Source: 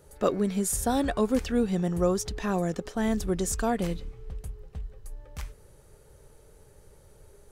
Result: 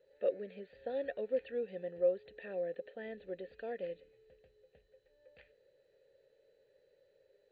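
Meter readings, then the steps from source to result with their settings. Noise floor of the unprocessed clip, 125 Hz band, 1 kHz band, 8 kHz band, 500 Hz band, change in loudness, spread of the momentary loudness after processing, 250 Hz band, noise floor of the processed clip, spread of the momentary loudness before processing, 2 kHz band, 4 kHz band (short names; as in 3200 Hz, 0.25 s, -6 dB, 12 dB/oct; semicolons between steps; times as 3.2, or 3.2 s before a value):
-56 dBFS, -27.5 dB, -20.5 dB, under -40 dB, -6.5 dB, -11.5 dB, 13 LU, -23.0 dB, -72 dBFS, 17 LU, -12.0 dB, under -20 dB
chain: vowel filter e; gain -2 dB; MP2 48 kbps 16000 Hz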